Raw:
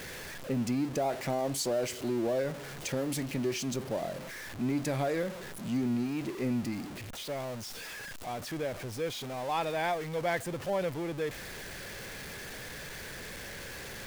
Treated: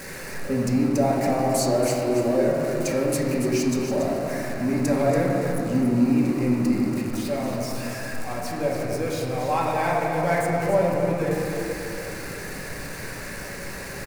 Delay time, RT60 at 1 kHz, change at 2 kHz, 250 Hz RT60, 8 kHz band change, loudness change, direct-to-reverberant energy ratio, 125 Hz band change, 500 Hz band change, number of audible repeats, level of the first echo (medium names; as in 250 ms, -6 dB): 283 ms, 2.8 s, +7.5 dB, 3.6 s, +7.0 dB, +10.0 dB, -4.5 dB, +10.5 dB, +10.0 dB, 1, -8.0 dB